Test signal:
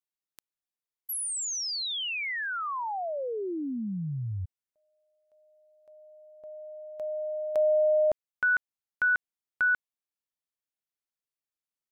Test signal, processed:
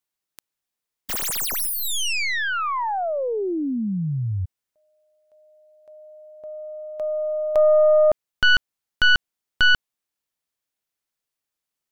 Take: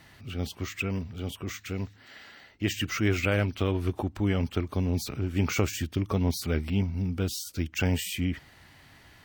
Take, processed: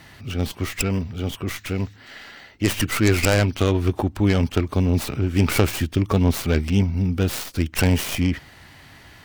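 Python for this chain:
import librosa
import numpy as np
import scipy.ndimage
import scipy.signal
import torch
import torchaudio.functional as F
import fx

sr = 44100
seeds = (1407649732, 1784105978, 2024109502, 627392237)

y = fx.tracing_dist(x, sr, depth_ms=0.24)
y = y * 10.0 ** (8.0 / 20.0)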